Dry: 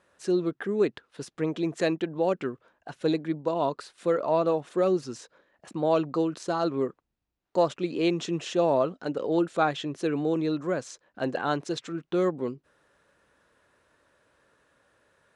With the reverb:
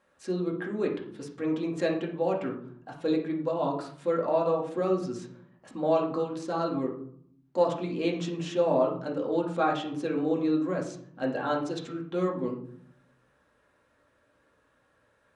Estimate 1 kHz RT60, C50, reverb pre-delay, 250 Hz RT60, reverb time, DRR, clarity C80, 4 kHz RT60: 0.60 s, 6.0 dB, 4 ms, 1.1 s, 0.60 s, -1.5 dB, 11.0 dB, 0.35 s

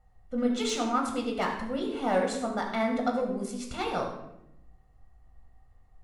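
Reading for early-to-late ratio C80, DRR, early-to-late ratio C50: 7.5 dB, 0.0 dB, 5.0 dB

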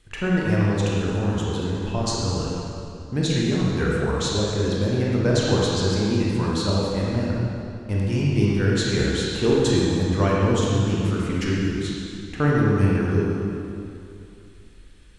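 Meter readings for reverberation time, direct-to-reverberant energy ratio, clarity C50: 2.7 s, -5.0 dB, -3.0 dB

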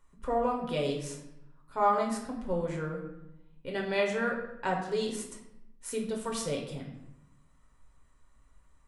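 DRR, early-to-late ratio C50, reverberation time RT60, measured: 0.0 dB, 6.0 dB, 0.85 s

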